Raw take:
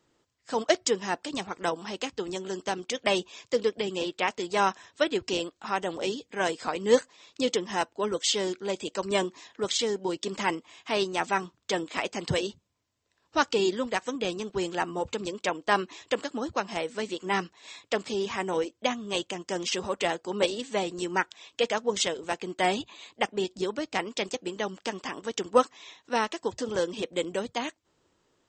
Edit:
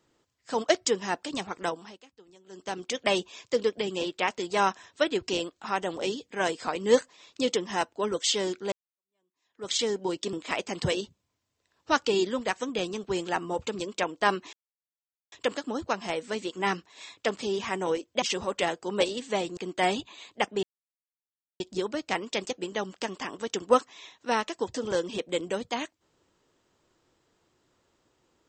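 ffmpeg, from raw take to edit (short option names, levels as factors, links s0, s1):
-filter_complex "[0:a]asplit=9[s0][s1][s2][s3][s4][s5][s6][s7][s8];[s0]atrim=end=2,asetpts=PTS-STARTPTS,afade=t=out:st=1.6:d=0.4:silence=0.0794328[s9];[s1]atrim=start=2:end=2.46,asetpts=PTS-STARTPTS,volume=0.0794[s10];[s2]atrim=start=2.46:end=8.72,asetpts=PTS-STARTPTS,afade=t=in:d=0.4:silence=0.0794328,afade=t=out:st=6.256:d=0.004:c=hsin[s11];[s3]atrim=start=8.72:end=10.332,asetpts=PTS-STARTPTS,afade=t=in:d=1:c=exp[s12];[s4]atrim=start=11.788:end=15.99,asetpts=PTS-STARTPTS,afade=t=out:st=4.198:d=0.004:c=hsin,apad=pad_dur=0.79[s13];[s5]atrim=start=15.99:end=18.892,asetpts=PTS-STARTPTS,afade=t=in:d=0.004:c=hsin[s14];[s6]atrim=start=19.638:end=20.992[s15];[s7]atrim=start=22.378:end=23.44,asetpts=PTS-STARTPTS,afade=t=out:st=1.058:d=0.004:c=hsin,apad=pad_dur=0.97[s16];[s8]atrim=start=23.44,asetpts=PTS-STARTPTS,afade=t=in:d=0.004:c=hsin[s17];[s9][s10][s11][s12]concat=n=4:v=0:a=1[s18];[s13][s14]concat=n=2:v=0:a=1[s19];[s18][s19]acrossfade=d=0.004:c1=hsin:c2=hsin[s20];[s20][s15]acrossfade=d=0.004:c1=hsin:c2=hsin[s21];[s16][s17]concat=n=2:v=0:a=1[s22];[s21][s22]acrossfade=d=0.004:c1=hsin:c2=hsin"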